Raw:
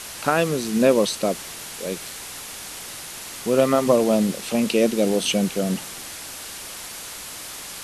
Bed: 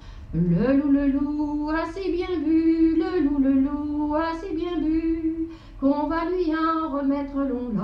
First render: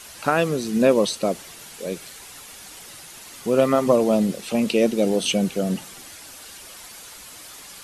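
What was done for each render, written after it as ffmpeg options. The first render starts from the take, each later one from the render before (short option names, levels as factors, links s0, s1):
-af "afftdn=nr=8:nf=-36"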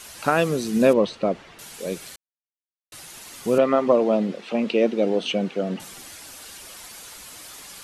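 -filter_complex "[0:a]asettb=1/sr,asplit=3[s0][s1][s2];[s0]atrim=end=0.934[s3];[s1]atrim=start=0.93:end=1.59,asetpts=PTS-STARTPTS,afade=t=in:d=0.004:c=qsin,afade=t=out:st=0.656:d=0.004:c=qsin,lowpass=2600[s4];[s2]atrim=start=1.586[s5];[s3][s4]acrossfade=d=0.004:c1=hsin:c2=qsin[s6];[s6][s5]acrossfade=d=0.004:c1=qsin:c2=hsin,asettb=1/sr,asplit=3[s7][s8][s9];[s7]atrim=end=3.584[s10];[s8]atrim=start=3.58:end=5.8,asetpts=PTS-STARTPTS,afade=t=in:d=0.004:c=qsin,afade=t=out:st=2.216:d=0.004:c=qsin,highpass=230,lowpass=3000[s11];[s9]atrim=start=5.796[s12];[s10][s11]acrossfade=d=0.004:c1=hsin:c2=qsin[s13];[s13][s12]acrossfade=d=0.004:c1=qsin:c2=hsin,asplit=3[s14][s15][s16];[s14]atrim=end=2.16,asetpts=PTS-STARTPTS,afade=t=out:st=2.156:d=0.004:c=hsin[s17];[s15]atrim=start=2.16:end=2.92,asetpts=PTS-STARTPTS,volume=0[s18];[s16]atrim=start=2.92,asetpts=PTS-STARTPTS,afade=t=in:d=0.004:c=hsin[s19];[s17][s18][s19]concat=n=3:v=0:a=1"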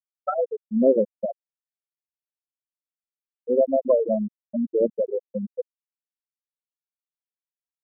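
-af "afwtdn=0.0251,afftfilt=real='re*gte(hypot(re,im),0.631)':imag='im*gte(hypot(re,im),0.631)':win_size=1024:overlap=0.75"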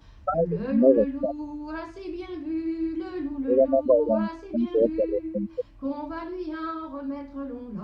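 -filter_complex "[1:a]volume=0.335[s0];[0:a][s0]amix=inputs=2:normalize=0"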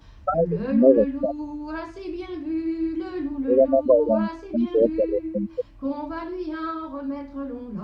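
-af "volume=1.33"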